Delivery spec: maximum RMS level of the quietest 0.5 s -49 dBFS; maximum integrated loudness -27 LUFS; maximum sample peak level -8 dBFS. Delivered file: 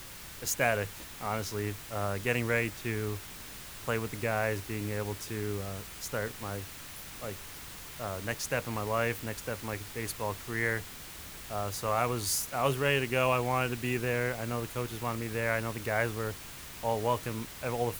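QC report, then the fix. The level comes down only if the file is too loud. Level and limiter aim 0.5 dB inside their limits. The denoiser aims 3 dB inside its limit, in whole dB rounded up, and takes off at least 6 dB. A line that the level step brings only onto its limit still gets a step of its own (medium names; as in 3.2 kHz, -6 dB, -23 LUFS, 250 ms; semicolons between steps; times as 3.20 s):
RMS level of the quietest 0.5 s -45 dBFS: fail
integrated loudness -33.0 LUFS: pass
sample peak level -12.0 dBFS: pass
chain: noise reduction 7 dB, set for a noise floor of -45 dBFS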